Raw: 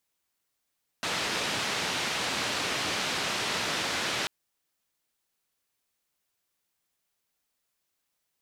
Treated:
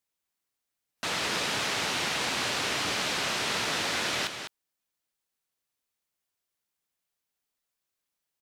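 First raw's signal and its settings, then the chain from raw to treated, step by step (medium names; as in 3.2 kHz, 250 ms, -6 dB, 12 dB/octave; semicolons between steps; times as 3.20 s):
noise band 100–4100 Hz, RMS -30.5 dBFS 3.24 s
spectral noise reduction 6 dB; on a send: delay 203 ms -8 dB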